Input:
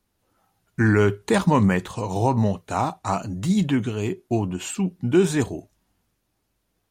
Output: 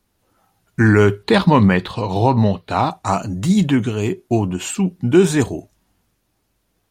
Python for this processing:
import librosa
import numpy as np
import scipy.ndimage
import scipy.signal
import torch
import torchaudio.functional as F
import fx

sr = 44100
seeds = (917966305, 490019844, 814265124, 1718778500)

y = fx.high_shelf_res(x, sr, hz=5300.0, db=-7.5, q=3.0, at=(1.23, 2.91))
y = y * librosa.db_to_amplitude(5.5)